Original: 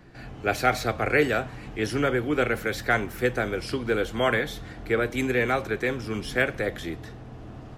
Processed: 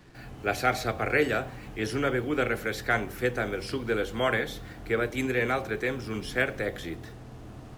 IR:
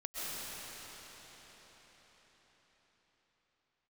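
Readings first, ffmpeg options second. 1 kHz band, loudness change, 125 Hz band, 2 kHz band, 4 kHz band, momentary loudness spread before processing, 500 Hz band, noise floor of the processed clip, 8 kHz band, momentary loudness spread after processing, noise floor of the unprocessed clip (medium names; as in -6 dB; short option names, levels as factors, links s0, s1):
-3.0 dB, -3.0 dB, -3.0 dB, -2.5 dB, -2.5 dB, 12 LU, -3.0 dB, -45 dBFS, -2.5 dB, 12 LU, -42 dBFS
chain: -af "acrusher=bits=8:mix=0:aa=0.5,bandreject=f=48.48:t=h:w=4,bandreject=f=96.96:t=h:w=4,bandreject=f=145.44:t=h:w=4,bandreject=f=193.92:t=h:w=4,bandreject=f=242.4:t=h:w=4,bandreject=f=290.88:t=h:w=4,bandreject=f=339.36:t=h:w=4,bandreject=f=387.84:t=h:w=4,bandreject=f=436.32:t=h:w=4,bandreject=f=484.8:t=h:w=4,bandreject=f=533.28:t=h:w=4,bandreject=f=581.76:t=h:w=4,bandreject=f=630.24:t=h:w=4,bandreject=f=678.72:t=h:w=4,bandreject=f=727.2:t=h:w=4,bandreject=f=775.68:t=h:w=4,bandreject=f=824.16:t=h:w=4,volume=0.75"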